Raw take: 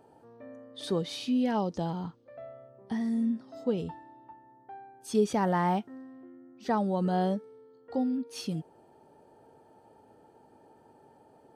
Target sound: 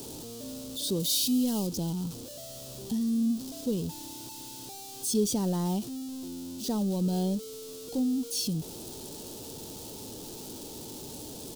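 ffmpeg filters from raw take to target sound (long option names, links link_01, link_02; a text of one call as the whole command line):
ffmpeg -i in.wav -filter_complex "[0:a]aeval=exprs='val(0)+0.5*0.0188*sgn(val(0))':channel_layout=same,asettb=1/sr,asplit=3[link_01][link_02][link_03];[link_01]atrim=end=1.004[link_04];[link_02]atrim=start=1:end=1.67,asetpts=PTS-STARTPTS,afade=type=in:duration=0.004:curve=qsin,afade=type=out:start_time=0.666:duration=0.004:curve=qsin,aemphasis=mode=production:type=cd[link_05];[link_03]atrim=start=1.666[link_06];[link_04][link_05]acrossfade=duration=0.004:curve1=hsin:curve2=qsin[link_07];[link_07][link_06]acrossfade=duration=0.004:curve1=qsin:curve2=hsin,aexciter=amount=14.4:drive=3.4:freq=3100,firequalizer=gain_entry='entry(290,0);entry(670,-11);entry(1600,-18)':delay=0.05:min_phase=1" out.wav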